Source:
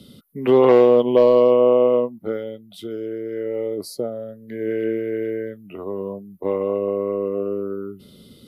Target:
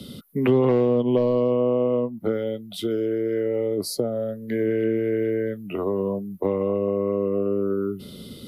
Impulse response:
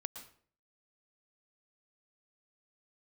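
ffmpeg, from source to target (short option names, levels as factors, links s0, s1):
-filter_complex "[0:a]acrossover=split=210[s0][s1];[s1]acompressor=threshold=0.0355:ratio=6[s2];[s0][s2]amix=inputs=2:normalize=0,volume=2.24"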